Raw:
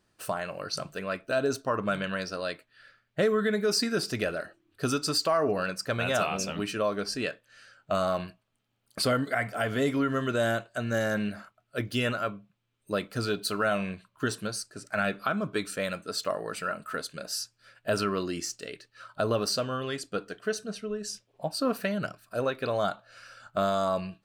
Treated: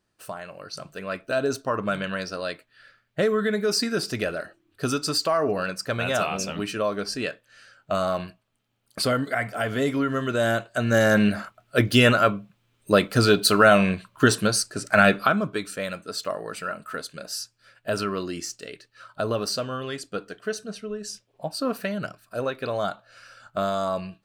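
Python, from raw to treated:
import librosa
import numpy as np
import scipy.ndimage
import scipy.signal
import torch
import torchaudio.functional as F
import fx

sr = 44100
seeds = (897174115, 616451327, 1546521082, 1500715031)

y = fx.gain(x, sr, db=fx.line((0.73, -4.0), (1.18, 2.5), (10.29, 2.5), (11.3, 11.5), (15.15, 11.5), (15.59, 1.0)))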